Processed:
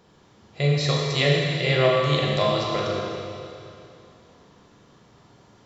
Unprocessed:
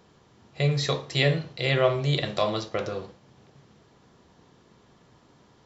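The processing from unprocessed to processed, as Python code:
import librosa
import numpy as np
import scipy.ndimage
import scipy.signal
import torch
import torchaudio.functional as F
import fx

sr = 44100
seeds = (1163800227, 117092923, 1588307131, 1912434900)

y = fx.rev_schroeder(x, sr, rt60_s=2.6, comb_ms=27, drr_db=-2.0)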